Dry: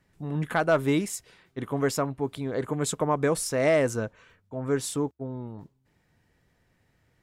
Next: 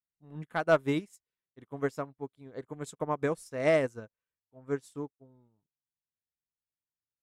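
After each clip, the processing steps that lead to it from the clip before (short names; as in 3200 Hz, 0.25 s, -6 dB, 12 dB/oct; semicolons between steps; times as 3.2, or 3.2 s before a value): upward expander 2.5:1, over -45 dBFS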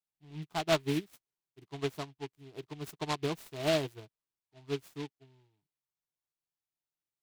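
fixed phaser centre 350 Hz, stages 8; noise-modulated delay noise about 2600 Hz, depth 0.1 ms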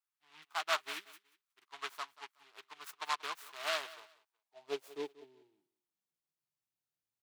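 soft clip -18.5 dBFS, distortion -23 dB; high-pass sweep 1200 Hz -> 83 Hz, 3.86–7.05; feedback echo 0.184 s, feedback 23%, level -18 dB; gain -2 dB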